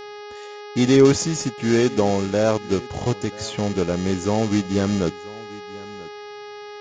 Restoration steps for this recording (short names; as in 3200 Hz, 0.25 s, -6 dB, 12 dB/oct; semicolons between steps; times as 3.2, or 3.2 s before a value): de-hum 414.8 Hz, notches 14; inverse comb 0.986 s -20.5 dB